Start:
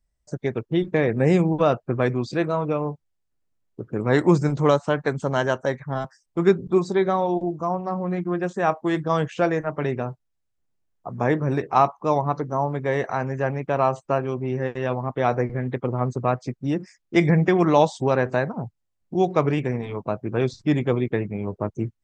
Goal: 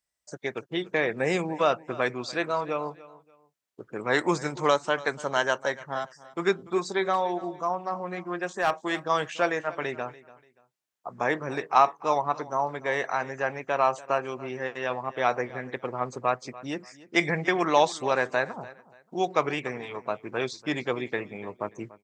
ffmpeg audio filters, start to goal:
ffmpeg -i in.wav -filter_complex "[0:a]highpass=frequency=1300:poles=1,asettb=1/sr,asplit=3[link_01][link_02][link_03];[link_01]atrim=end=7.134[link_04];[link_02]atrim=start=7.13:end=8.92,asetpts=PTS-STARTPTS,afade=type=in:duration=0.004:curve=qsin,afade=type=out:start_time=1.786:duration=0.004:curve=qsin,volume=20.5dB,asoftclip=hard,volume=-20.5dB[link_05];[link_03]atrim=start=8.916[link_06];[link_04][link_05]acrossfade=duration=0.004:curve1=hsin:curve2=qsin[link_07];[link_07][link_06]acrossfade=duration=0.004:curve1=qsin:curve2=hsin,aecho=1:1:290|580:0.112|0.0314,volume=3.5dB" out.wav

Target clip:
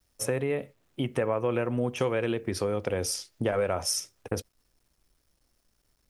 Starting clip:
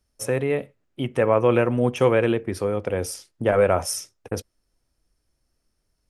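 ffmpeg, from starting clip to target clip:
ffmpeg -i in.wav -filter_complex "[0:a]asettb=1/sr,asplit=3[link_01][link_02][link_03];[link_01]atrim=end=1.984[link_04];[link_02]atrim=start=1.98:end=4,asetpts=PTS-STARTPTS,afade=type=in:duration=0.004:curve=qsin,afade=type=out:start_time=2.016:duration=0.004:curve=qsin,equalizer=frequency=4900:width=0.95:gain=6.5[link_05];[link_03]atrim=start=3.996[link_06];[link_04][link_05]acrossfade=duration=0.004:curve1=hsin:curve2=qsin[link_07];[link_07][link_06]acrossfade=duration=0.004:curve1=qsin:curve2=hsin,acompressor=threshold=-25dB:ratio=4,acrusher=bits=11:mix=0:aa=0.000001" out.wav

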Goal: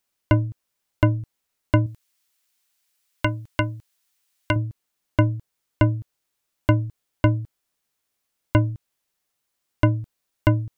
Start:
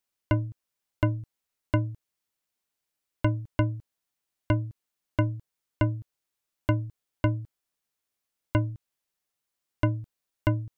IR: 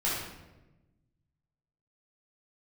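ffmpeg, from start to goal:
-filter_complex "[0:a]asettb=1/sr,asplit=3[link_01][link_02][link_03];[link_01]atrim=end=1.864[link_04];[link_02]atrim=start=1.86:end=4.56,asetpts=PTS-STARTPTS,afade=type=in:duration=0.004:curve=qsin,afade=type=out:start_time=2.696:duration=0.004:curve=qsin,tiltshelf=frequency=970:gain=-7[link_05];[link_03]atrim=start=4.556[link_06];[link_04][link_05]acrossfade=duration=0.004:curve1=hsin:curve2=qsin[link_07];[link_07][link_06]acrossfade=duration=0.004:curve1=qsin:curve2=hsin,volume=6.5dB"

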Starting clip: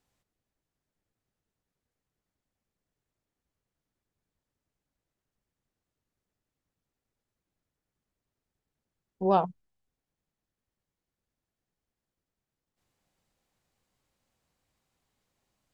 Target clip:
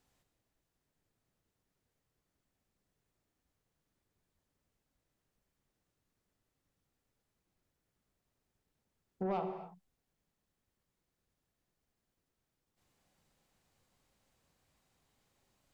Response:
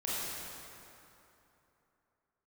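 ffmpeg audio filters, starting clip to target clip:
-filter_complex "[0:a]acompressor=threshold=-35dB:ratio=4,asoftclip=type=tanh:threshold=-31dB,asplit=2[link_01][link_02];[1:a]atrim=start_sample=2205,afade=type=out:start_time=0.34:duration=0.01,atrim=end_sample=15435[link_03];[link_02][link_03]afir=irnorm=-1:irlink=0,volume=-8.5dB[link_04];[link_01][link_04]amix=inputs=2:normalize=0"

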